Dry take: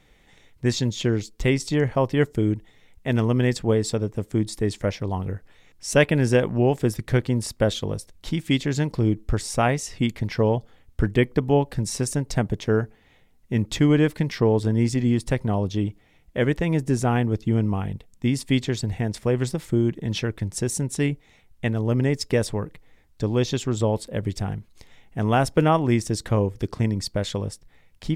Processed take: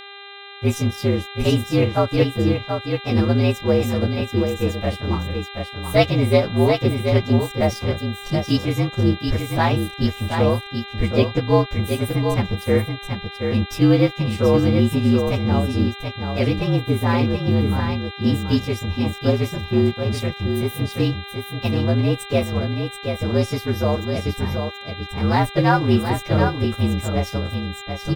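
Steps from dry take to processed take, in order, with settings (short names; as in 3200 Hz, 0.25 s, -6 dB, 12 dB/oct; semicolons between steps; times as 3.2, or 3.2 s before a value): inharmonic rescaling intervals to 116%; high shelf 10000 Hz -7 dB; crossover distortion -45.5 dBFS; buzz 400 Hz, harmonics 10, -44 dBFS 0 dB/oct; echo 0.73 s -6 dB; gain +4.5 dB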